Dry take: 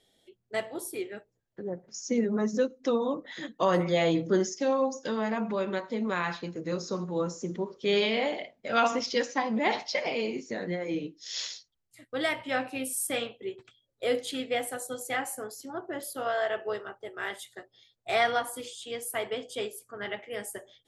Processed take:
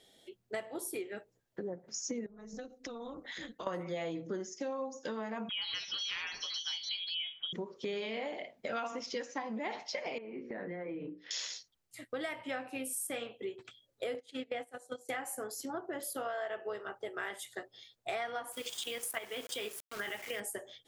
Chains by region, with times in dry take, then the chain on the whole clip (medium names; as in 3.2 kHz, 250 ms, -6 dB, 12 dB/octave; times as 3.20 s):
2.26–3.67 s: peaking EQ 590 Hz -5 dB 2.4 oct + AM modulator 240 Hz, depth 50% + compression 16:1, threshold -43 dBFS
5.49–7.53 s: frequency inversion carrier 3.5 kHz + ever faster or slower copies 127 ms, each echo +5 st, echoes 2, each echo -6 dB
10.18–11.31 s: low-pass 2.2 kHz 24 dB/octave + hum notches 60/120/180/240/300/360/420/480/540/600 Hz + compression 5:1, threshold -40 dBFS
14.14–15.09 s: gate -34 dBFS, range -18 dB + distance through air 50 m
18.52–20.40 s: peaking EQ 3 kHz +10 dB 2.6 oct + level held to a coarse grid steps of 12 dB + word length cut 8-bit, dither none
whole clip: dynamic bell 4.1 kHz, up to -5 dB, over -50 dBFS, Q 1.5; compression 6:1, threshold -41 dBFS; bass shelf 130 Hz -7.5 dB; trim +5 dB